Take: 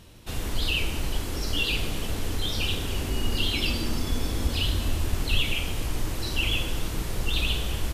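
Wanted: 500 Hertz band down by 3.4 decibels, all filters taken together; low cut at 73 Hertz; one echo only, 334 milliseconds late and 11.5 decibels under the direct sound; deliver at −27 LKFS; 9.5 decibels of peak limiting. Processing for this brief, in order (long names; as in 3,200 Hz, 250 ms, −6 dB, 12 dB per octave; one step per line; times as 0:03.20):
high-pass filter 73 Hz
parametric band 500 Hz −4.5 dB
brickwall limiter −24 dBFS
single-tap delay 334 ms −11.5 dB
level +5.5 dB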